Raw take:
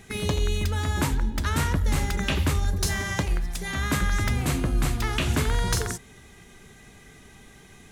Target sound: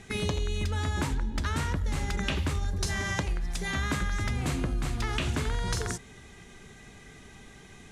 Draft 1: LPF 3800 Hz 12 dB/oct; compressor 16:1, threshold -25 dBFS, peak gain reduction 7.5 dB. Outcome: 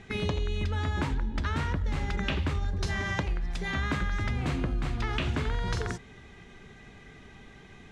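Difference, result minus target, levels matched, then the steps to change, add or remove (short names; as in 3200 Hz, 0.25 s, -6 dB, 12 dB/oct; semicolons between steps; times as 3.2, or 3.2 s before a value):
8000 Hz band -9.5 dB
change: LPF 8900 Hz 12 dB/oct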